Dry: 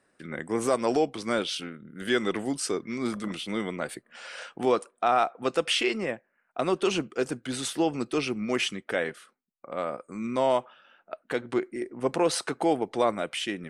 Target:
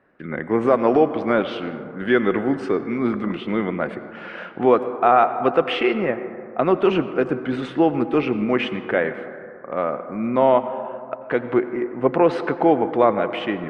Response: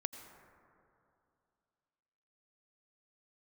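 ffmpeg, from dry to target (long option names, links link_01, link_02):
-filter_complex "[0:a]lowpass=2400,asplit=2[link_01][link_02];[1:a]atrim=start_sample=2205,lowpass=3300[link_03];[link_02][link_03]afir=irnorm=-1:irlink=0,volume=5.5dB[link_04];[link_01][link_04]amix=inputs=2:normalize=0"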